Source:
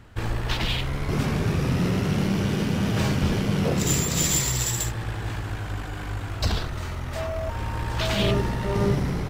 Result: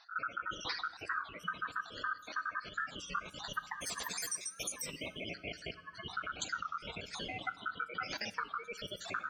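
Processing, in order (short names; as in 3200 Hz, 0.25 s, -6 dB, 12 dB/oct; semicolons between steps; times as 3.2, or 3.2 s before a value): random spectral dropouts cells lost 70%; notch 1400 Hz, Q 25; spectral gate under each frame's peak -10 dB strong; 3.59–6.06 Bessel high-pass 420 Hz, order 4; compressor 5:1, threshold -42 dBFS, peak gain reduction 19 dB; ring modulator 1400 Hz; reverb RT60 1.1 s, pre-delay 3 ms, DRR 14 dB; record warp 33 1/3 rpm, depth 160 cents; gain +7.5 dB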